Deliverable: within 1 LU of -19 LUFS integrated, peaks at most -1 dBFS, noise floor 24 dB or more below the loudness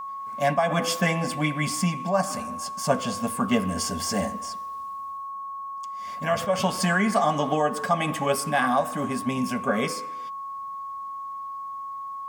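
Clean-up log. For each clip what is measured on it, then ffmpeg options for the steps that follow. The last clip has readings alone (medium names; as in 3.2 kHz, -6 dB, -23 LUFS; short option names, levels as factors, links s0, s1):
steady tone 1.1 kHz; tone level -32 dBFS; loudness -26.5 LUFS; peak level -8.5 dBFS; loudness target -19.0 LUFS
-> -af "bandreject=f=1100:w=30"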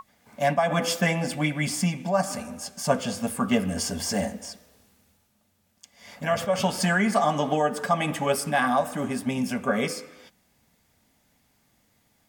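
steady tone not found; loudness -26.0 LUFS; peak level -8.5 dBFS; loudness target -19.0 LUFS
-> -af "volume=2.24"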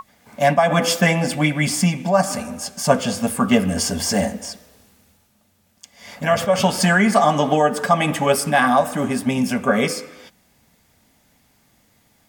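loudness -19.0 LUFS; peak level -1.5 dBFS; noise floor -61 dBFS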